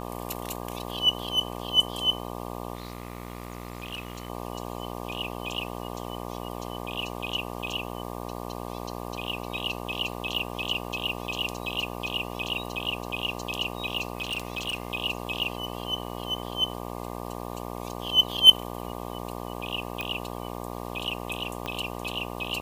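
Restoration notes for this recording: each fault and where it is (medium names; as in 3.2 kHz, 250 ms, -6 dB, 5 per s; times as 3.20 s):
buzz 60 Hz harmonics 20 -36 dBFS
2.75–4.30 s: clipped -30 dBFS
14.15–14.92 s: clipped -25.5 dBFS
20.01 s: pop -16 dBFS
21.66 s: pop -17 dBFS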